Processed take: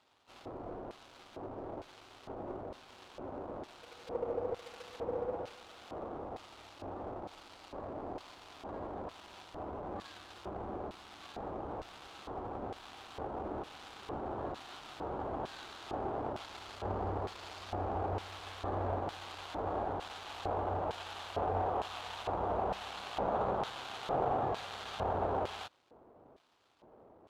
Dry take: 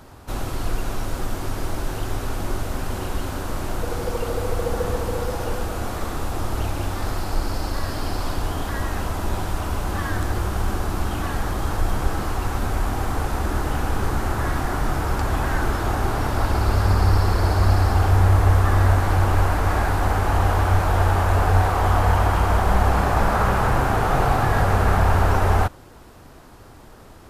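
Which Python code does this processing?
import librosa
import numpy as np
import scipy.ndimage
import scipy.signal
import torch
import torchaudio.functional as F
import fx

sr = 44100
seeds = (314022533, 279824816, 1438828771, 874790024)

y = scipy.signal.medfilt(x, 25)
y = fx.filter_lfo_bandpass(y, sr, shape='square', hz=1.1, low_hz=580.0, high_hz=3800.0, q=1.1)
y = y * 10.0 ** (-6.5 / 20.0)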